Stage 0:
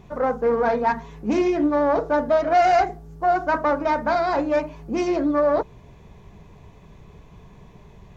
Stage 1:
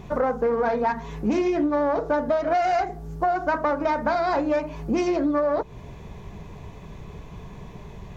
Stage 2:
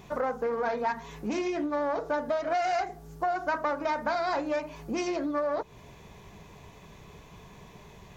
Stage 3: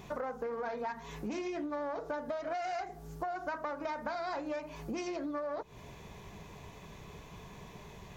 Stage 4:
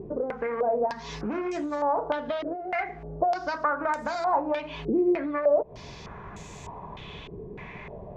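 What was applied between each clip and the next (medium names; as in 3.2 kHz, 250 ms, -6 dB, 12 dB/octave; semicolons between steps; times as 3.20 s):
compression 6:1, threshold -27 dBFS, peak gain reduction 13 dB; trim +6.5 dB
tilt EQ +2 dB/octave; trim -5 dB
compression 3:1, threshold -37 dBFS, peak gain reduction 9.5 dB
step-sequenced low-pass 3.3 Hz 400–7600 Hz; trim +6.5 dB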